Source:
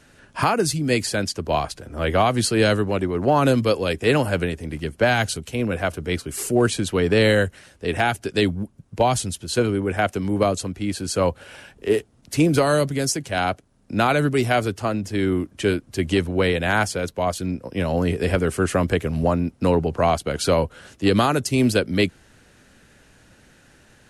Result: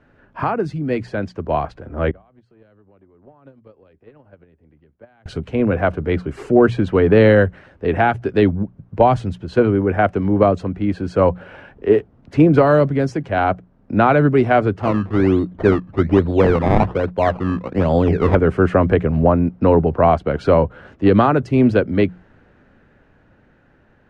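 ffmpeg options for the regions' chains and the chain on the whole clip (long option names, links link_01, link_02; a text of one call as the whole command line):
ffmpeg -i in.wav -filter_complex "[0:a]asettb=1/sr,asplit=3[link_01][link_02][link_03];[link_01]atrim=end=2.114[link_04];[link_02]atrim=start=2.11:end=5.26,asetpts=PTS-STARTPTS,afade=type=in:duration=0.004:curve=qsin,afade=type=out:start_time=3.146:duration=0.004:curve=qsin,lowpass=10000,acompressor=threshold=-25dB:ratio=8:attack=3.2:release=140:knee=1:detection=peak,agate=range=-30dB:threshold=-25dB:ratio=16:release=100:detection=peak[link_05];[link_03]atrim=start=5.256[link_06];[link_04][link_05]acrossfade=duration=0.004:curve1=hsin:curve2=qsin[link_07];[link_07][link_06]acrossfade=duration=0.004:curve1=qsin:curve2=hsin,asettb=1/sr,asplit=3[link_08][link_09][link_10];[link_08]atrim=end=14.824[link_11];[link_09]atrim=start=14.82:end=18.35,asetpts=PTS-STARTPTS,afade=type=in:duration=0.004:curve=qsin,afade=type=out:start_time=3.526:duration=0.004:curve=qsin,lowpass=2900,acrusher=samples=21:mix=1:aa=0.000001:lfo=1:lforange=21:lforate=1.2[link_12];[link_10]atrim=start=18.346[link_13];[link_11][link_12]acrossfade=duration=0.004:curve1=hsin:curve2=qsin[link_14];[link_14][link_13]acrossfade=duration=0.004:curve1=qsin:curve2=hsin,lowpass=1500,bandreject=frequency=60:width_type=h:width=6,bandreject=frequency=120:width_type=h:width=6,bandreject=frequency=180:width_type=h:width=6,dynaudnorm=framelen=180:gausssize=21:maxgain=11.5dB" out.wav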